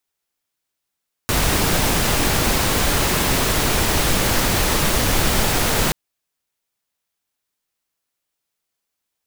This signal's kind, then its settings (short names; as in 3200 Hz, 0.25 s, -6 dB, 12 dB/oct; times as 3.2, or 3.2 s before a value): noise pink, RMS -18 dBFS 4.63 s